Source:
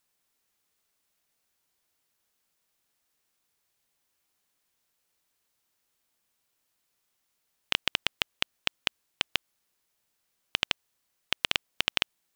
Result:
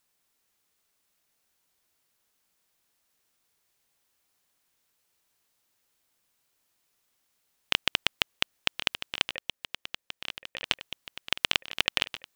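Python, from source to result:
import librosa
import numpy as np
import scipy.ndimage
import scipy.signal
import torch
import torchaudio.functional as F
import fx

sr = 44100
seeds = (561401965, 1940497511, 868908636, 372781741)

y = fx.formant_cascade(x, sr, vowel='e', at=(9.29, 10.64))
y = fx.echo_swing(y, sr, ms=1430, ratio=3, feedback_pct=62, wet_db=-11.5)
y = y * 10.0 ** (2.0 / 20.0)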